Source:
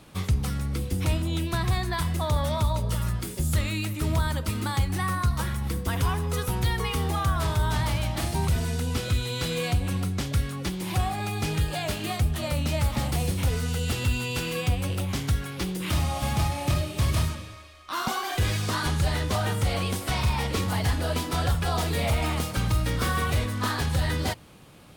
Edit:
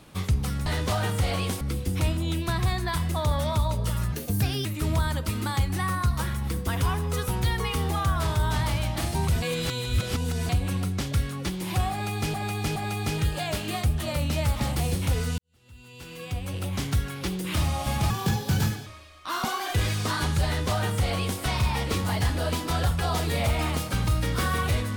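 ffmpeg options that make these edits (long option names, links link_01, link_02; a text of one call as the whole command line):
ffmpeg -i in.wav -filter_complex "[0:a]asplit=12[link_01][link_02][link_03][link_04][link_05][link_06][link_07][link_08][link_09][link_10][link_11][link_12];[link_01]atrim=end=0.662[link_13];[link_02]atrim=start=19.088:end=20.042[link_14];[link_03]atrim=start=0.658:end=3.174[link_15];[link_04]atrim=start=3.17:end=3.85,asetpts=PTS-STARTPTS,asetrate=56448,aresample=44100,atrim=end_sample=23428,asetpts=PTS-STARTPTS[link_16];[link_05]atrim=start=3.846:end=8.622[link_17];[link_06]atrim=start=8.618:end=9.692,asetpts=PTS-STARTPTS,areverse[link_18];[link_07]atrim=start=9.688:end=11.542[link_19];[link_08]atrim=start=11.118:end=11.542[link_20];[link_09]atrim=start=11.118:end=13.74,asetpts=PTS-STARTPTS,afade=type=out:start_time=2.618:duration=0.004:curve=hsin[link_21];[link_10]atrim=start=13.74:end=16.464,asetpts=PTS-STARTPTS,afade=type=in:duration=1.43:curve=qua[link_22];[link_11]atrim=start=16.46:end=17.5,asetpts=PTS-STARTPTS,asetrate=59976,aresample=44100[link_23];[link_12]atrim=start=17.496[link_24];[link_13][link_14]acrossfade=duration=0.004:curve1=hsin:curve2=hsin[link_25];[link_25][link_15]acrossfade=duration=0.004:curve1=hsin:curve2=hsin[link_26];[link_26][link_16]acrossfade=duration=0.004:curve1=hsin:curve2=hsin[link_27];[link_27][link_17]acrossfade=duration=0.004:curve1=hsin:curve2=hsin[link_28];[link_28][link_18]acrossfade=duration=0.004:curve1=hsin:curve2=hsin[link_29];[link_29][link_19]acrossfade=duration=0.004:curve1=hsin:curve2=hsin[link_30];[link_30][link_20]acrossfade=duration=0.004:curve1=hsin:curve2=hsin[link_31];[link_21][link_22]concat=n=2:v=0:a=1[link_32];[link_31][link_32]acrossfade=duration=0.004:curve1=hsin:curve2=hsin[link_33];[link_33][link_23]acrossfade=duration=0.004:curve1=hsin:curve2=hsin[link_34];[link_34][link_24]acrossfade=duration=0.004:curve1=hsin:curve2=hsin" out.wav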